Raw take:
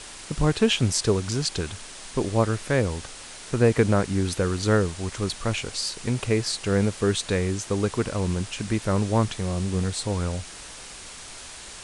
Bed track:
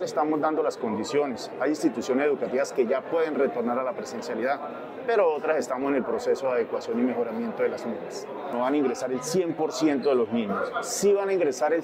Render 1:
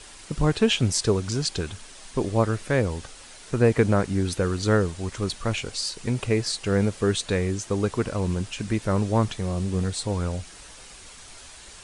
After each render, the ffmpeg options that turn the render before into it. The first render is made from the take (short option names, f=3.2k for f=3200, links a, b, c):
-af "afftdn=nr=6:nf=-41"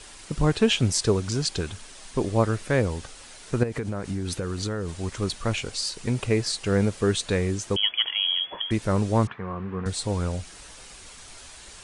-filter_complex "[0:a]asettb=1/sr,asplit=3[a][b][c];[a]atrim=end=3.634[d];[b]atrim=start=3.63:end=5.03,asetpts=PTS-STARTPTS,afade=t=in:d=0.004:c=qsin,afade=t=out:st=1.396:d=0.004:c=qsin,acompressor=threshold=-24dB:ratio=16:attack=3.2:release=140:knee=1:detection=peak[e];[c]atrim=start=5.026[f];[d][e]acrossfade=d=0.004:c1=hsin:c2=qsin[g];[g][f]acrossfade=d=0.004:c1=qsin:c2=hsin,asettb=1/sr,asplit=3[h][i][j];[h]atrim=end=7.764[k];[i]atrim=start=7.76:end=8.71,asetpts=PTS-STARTPTS,afade=t=in:d=0.004:c=qsin,afade=t=out:st=0.946:d=0.004:c=qsin,lowpass=f=2.9k:t=q:w=0.5098,lowpass=f=2.9k:t=q:w=0.6013,lowpass=f=2.9k:t=q:w=0.9,lowpass=f=2.9k:t=q:w=2.563,afreqshift=-3400[l];[j]atrim=start=8.706[m];[k][l]acrossfade=d=0.004:c1=hsin:c2=qsin[n];[n][m]acrossfade=d=0.004:c1=qsin:c2=hsin,asettb=1/sr,asplit=3[o][p][q];[o]atrim=end=9.274[r];[p]atrim=start=9.27:end=9.86,asetpts=PTS-STARTPTS,afade=t=in:d=0.004:c=qsin,afade=t=out:st=0.586:d=0.004:c=qsin,highpass=150,equalizer=f=170:t=q:w=4:g=-5,equalizer=f=310:t=q:w=4:g=-8,equalizer=f=600:t=q:w=4:g=-8,equalizer=f=1.1k:t=q:w=4:g=8,equalizer=f=1.5k:t=q:w=4:g=5,lowpass=f=2.2k:w=0.5412,lowpass=f=2.2k:w=1.3066[s];[q]atrim=start=9.856[t];[r][s]acrossfade=d=0.004:c1=hsin:c2=qsin[u];[u][t]acrossfade=d=0.004:c1=qsin:c2=hsin"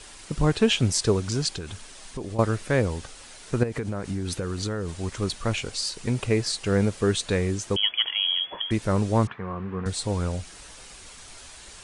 -filter_complex "[0:a]asettb=1/sr,asplit=3[a][b][c];[a]atrim=end=1.494[d];[b]atrim=start=1.49:end=2.39,asetpts=PTS-STARTPTS,afade=t=in:d=0.004:c=qsin,afade=t=out:st=0.896:d=0.004:c=qsin,acompressor=threshold=-30dB:ratio=4:attack=3.2:release=140:knee=1:detection=peak[e];[c]atrim=start=2.386[f];[d][e]acrossfade=d=0.004:c1=hsin:c2=qsin[g];[g][f]acrossfade=d=0.004:c1=qsin:c2=hsin"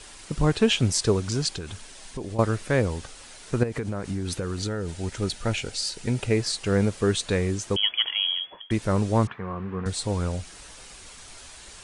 -filter_complex "[0:a]asettb=1/sr,asplit=3[a][b][c];[a]atrim=end=1.804[d];[b]atrim=start=1.8:end=2.37,asetpts=PTS-STARTPTS,afade=t=in:d=0.004:c=qsin,afade=t=out:st=0.566:d=0.004:c=qsin,bandreject=f=1.2k:w=11[e];[c]atrim=start=2.366[f];[d][e]acrossfade=d=0.004:c1=hsin:c2=qsin[g];[g][f]acrossfade=d=0.004:c1=qsin:c2=hsin,asettb=1/sr,asplit=3[h][i][j];[h]atrim=end=4.594[k];[i]atrim=start=4.59:end=6.35,asetpts=PTS-STARTPTS,afade=t=in:d=0.004:c=qsin,afade=t=out:st=1.756:d=0.004:c=qsin,asuperstop=centerf=1100:order=4:qfactor=5.9[l];[j]atrim=start=6.346[m];[k][l]acrossfade=d=0.004:c1=hsin:c2=qsin[n];[n][m]acrossfade=d=0.004:c1=qsin:c2=hsin,asplit=2[o][p];[o]atrim=end=8.7,asetpts=PTS-STARTPTS,afade=t=out:st=8.22:d=0.48:silence=0.0749894[q];[p]atrim=start=8.7,asetpts=PTS-STARTPTS,afade=t=in:d=0.004:c=hsin:silence=0.0749894[r];[q][r]concat=n=2:v=0:a=1"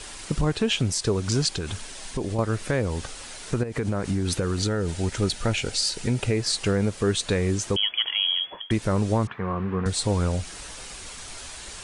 -filter_complex "[0:a]asplit=2[a][b];[b]acompressor=threshold=-29dB:ratio=6,volume=-0.5dB[c];[a][c]amix=inputs=2:normalize=0,alimiter=limit=-12.5dB:level=0:latency=1:release=206"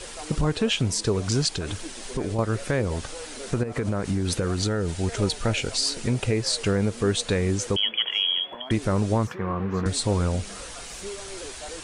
-filter_complex "[1:a]volume=-16.5dB[a];[0:a][a]amix=inputs=2:normalize=0"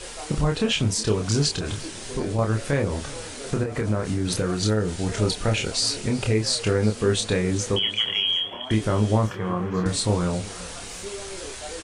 -filter_complex "[0:a]asplit=2[a][b];[b]adelay=28,volume=-4dB[c];[a][c]amix=inputs=2:normalize=0,aecho=1:1:368|736|1104|1472:0.1|0.05|0.025|0.0125"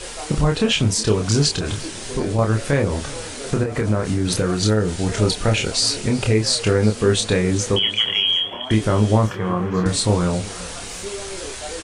-af "volume=4.5dB"